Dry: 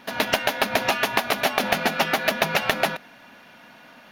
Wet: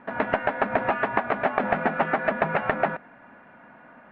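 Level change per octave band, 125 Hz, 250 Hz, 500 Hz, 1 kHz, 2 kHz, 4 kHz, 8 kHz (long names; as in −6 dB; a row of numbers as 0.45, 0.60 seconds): 0.0 dB, 0.0 dB, 0.0 dB, 0.0 dB, −3.5 dB, −20.5 dB, below −40 dB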